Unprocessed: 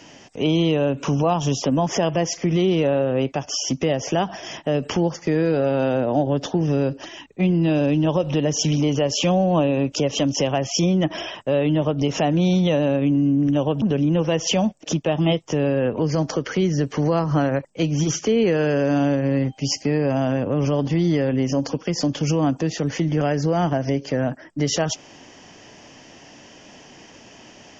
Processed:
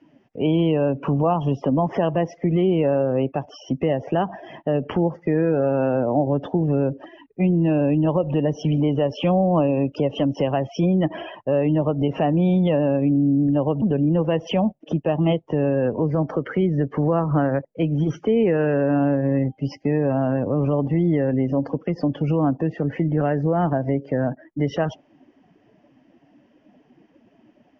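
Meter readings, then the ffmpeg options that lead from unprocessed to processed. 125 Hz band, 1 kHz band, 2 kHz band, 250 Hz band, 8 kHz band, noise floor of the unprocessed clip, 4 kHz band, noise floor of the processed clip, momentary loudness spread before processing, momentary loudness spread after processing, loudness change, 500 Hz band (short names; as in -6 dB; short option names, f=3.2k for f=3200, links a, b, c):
0.0 dB, 0.0 dB, -4.0 dB, 0.0 dB, n/a, -47 dBFS, -11.0 dB, -60 dBFS, 5 LU, 6 LU, -0.5 dB, 0.0 dB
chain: -af "lowpass=2.2k,afftdn=nr=17:nf=-36"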